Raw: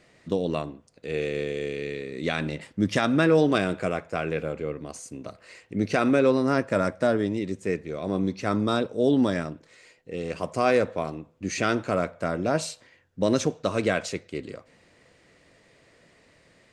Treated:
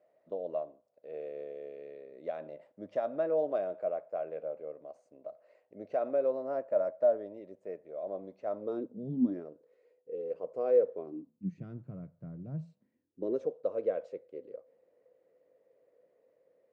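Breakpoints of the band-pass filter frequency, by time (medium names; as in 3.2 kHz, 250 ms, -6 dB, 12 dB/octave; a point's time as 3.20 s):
band-pass filter, Q 6.8
8.59 s 610 Hz
9.08 s 150 Hz
9.48 s 480 Hz
10.88 s 480 Hz
11.65 s 140 Hz
12.56 s 140 Hz
13.47 s 510 Hz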